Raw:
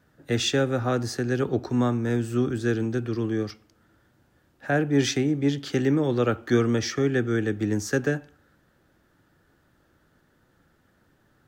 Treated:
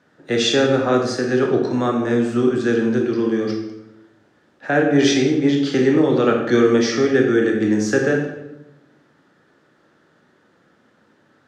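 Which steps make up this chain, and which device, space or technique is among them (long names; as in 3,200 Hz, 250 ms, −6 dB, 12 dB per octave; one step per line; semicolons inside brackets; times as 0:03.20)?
supermarket ceiling speaker (band-pass filter 200–6,100 Hz; convolution reverb RT60 0.95 s, pre-delay 21 ms, DRR 1 dB)
level +5.5 dB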